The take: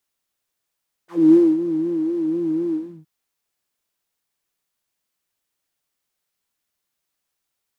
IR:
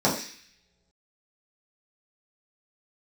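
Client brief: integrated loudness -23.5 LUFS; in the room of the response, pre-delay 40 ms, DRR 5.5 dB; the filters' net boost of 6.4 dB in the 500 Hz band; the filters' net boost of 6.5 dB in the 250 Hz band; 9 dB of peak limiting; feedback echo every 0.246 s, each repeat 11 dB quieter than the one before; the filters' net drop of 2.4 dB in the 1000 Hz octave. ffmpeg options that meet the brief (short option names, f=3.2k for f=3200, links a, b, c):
-filter_complex "[0:a]equalizer=f=250:t=o:g=6.5,equalizer=f=500:t=o:g=7,equalizer=f=1k:t=o:g=-5.5,alimiter=limit=-8.5dB:level=0:latency=1,aecho=1:1:246|492|738:0.282|0.0789|0.0221,asplit=2[a][b];[1:a]atrim=start_sample=2205,adelay=40[c];[b][c]afir=irnorm=-1:irlink=0,volume=-21.5dB[d];[a][d]amix=inputs=2:normalize=0,volume=-10.5dB"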